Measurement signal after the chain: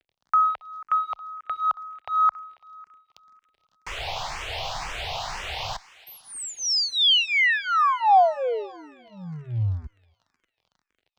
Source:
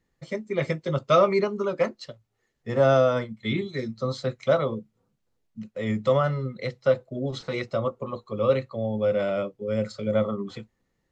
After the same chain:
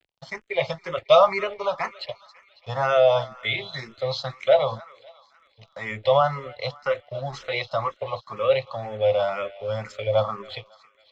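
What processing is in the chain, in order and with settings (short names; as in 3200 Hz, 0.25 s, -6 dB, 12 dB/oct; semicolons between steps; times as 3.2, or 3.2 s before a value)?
EQ curve 110 Hz 0 dB, 260 Hz -20 dB, 760 Hz +13 dB, 1500 Hz +3 dB, 2800 Hz +12 dB; in parallel at -0.5 dB: limiter -22.5 dBFS; on the sum: crackle 67/s -35 dBFS; crossover distortion -41 dBFS; air absorption 180 m; on a send: thinning echo 0.275 s, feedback 61%, high-pass 910 Hz, level -18 dB; on the sum: endless phaser +2 Hz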